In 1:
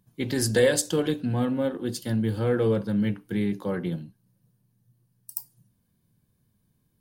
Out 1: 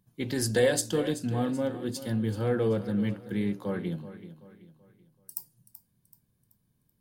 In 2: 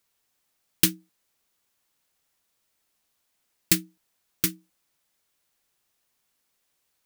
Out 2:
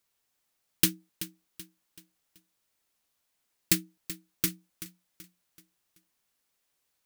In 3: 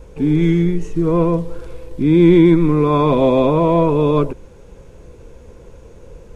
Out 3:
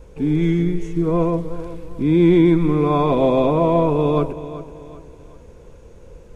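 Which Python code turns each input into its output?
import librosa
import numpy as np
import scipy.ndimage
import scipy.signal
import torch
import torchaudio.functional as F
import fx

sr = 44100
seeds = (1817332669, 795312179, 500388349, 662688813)

y = fx.dynamic_eq(x, sr, hz=720.0, q=6.8, threshold_db=-40.0, ratio=4.0, max_db=8)
y = fx.echo_feedback(y, sr, ms=381, feedback_pct=40, wet_db=-14.0)
y = F.gain(torch.from_numpy(y), -3.5).numpy()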